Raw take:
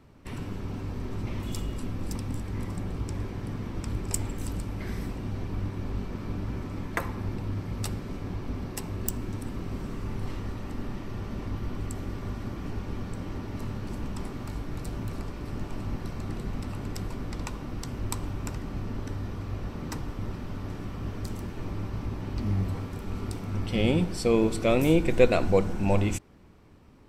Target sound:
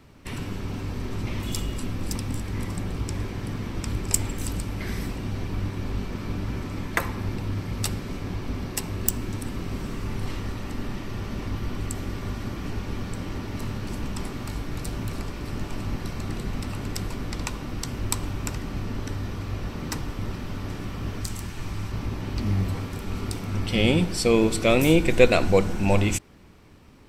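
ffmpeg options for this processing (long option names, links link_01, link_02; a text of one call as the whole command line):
ffmpeg -i in.wav -filter_complex "[0:a]asettb=1/sr,asplit=3[link_01][link_02][link_03];[link_01]atrim=end=21.214[link_04];[link_02]atrim=start=21.21:end=21.92,asetpts=PTS-STARTPTS,afade=type=in:duration=0.004:curve=qsin,afade=type=out:start_time=0.706:duration=0.004:curve=qsin,equalizer=frequency=250:width_type=o:width=1:gain=-4,equalizer=frequency=500:width_type=o:width=1:gain=-6,equalizer=frequency=8000:width_type=o:width=1:gain=5[link_05];[link_03]atrim=start=21.916[link_06];[link_04][link_05]acrossfade=duration=0.004:curve1=hsin:curve2=qsin[link_07];[link_07][link_06]acrossfade=duration=0.004:curve1=qsin:curve2=hsin,acrossover=split=1700[link_08][link_09];[link_09]acontrast=38[link_10];[link_08][link_10]amix=inputs=2:normalize=0,volume=3dB" out.wav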